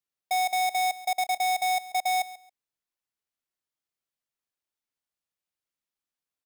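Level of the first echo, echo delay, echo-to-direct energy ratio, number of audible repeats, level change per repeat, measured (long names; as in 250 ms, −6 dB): −17.0 dB, 137 ms, −17.0 dB, 2, −14.0 dB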